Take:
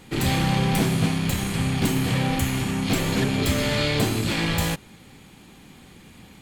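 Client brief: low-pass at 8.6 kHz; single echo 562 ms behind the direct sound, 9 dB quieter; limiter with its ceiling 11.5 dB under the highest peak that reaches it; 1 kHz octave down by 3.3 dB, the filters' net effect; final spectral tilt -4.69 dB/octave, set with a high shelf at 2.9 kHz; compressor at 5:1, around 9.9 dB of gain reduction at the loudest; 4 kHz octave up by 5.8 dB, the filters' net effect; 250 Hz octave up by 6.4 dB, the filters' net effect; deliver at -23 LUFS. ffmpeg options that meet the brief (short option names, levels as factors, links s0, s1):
-af "lowpass=8600,equalizer=f=250:t=o:g=8.5,equalizer=f=1000:t=o:g=-6,highshelf=f=2900:g=5.5,equalizer=f=4000:t=o:g=3.5,acompressor=threshold=0.0631:ratio=5,alimiter=level_in=1.26:limit=0.0631:level=0:latency=1,volume=0.794,aecho=1:1:562:0.355,volume=3.76"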